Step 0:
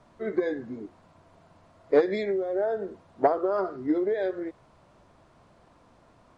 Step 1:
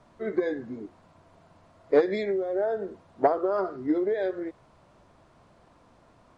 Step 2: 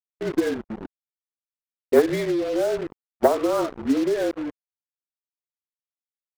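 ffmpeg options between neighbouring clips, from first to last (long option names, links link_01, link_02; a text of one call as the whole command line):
ffmpeg -i in.wav -af anull out.wav
ffmpeg -i in.wav -af "afreqshift=-36,acrusher=bits=5:mix=0:aa=0.000001,anlmdn=10,volume=4dB" out.wav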